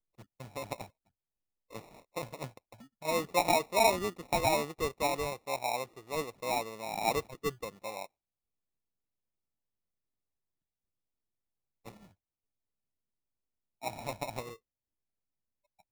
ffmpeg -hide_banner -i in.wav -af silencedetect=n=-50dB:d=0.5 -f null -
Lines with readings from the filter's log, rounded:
silence_start: 0.86
silence_end: 1.71 | silence_duration: 0.84
silence_start: 8.06
silence_end: 11.86 | silence_duration: 3.80
silence_start: 12.07
silence_end: 13.82 | silence_duration: 1.75
silence_start: 14.56
silence_end: 15.91 | silence_duration: 1.35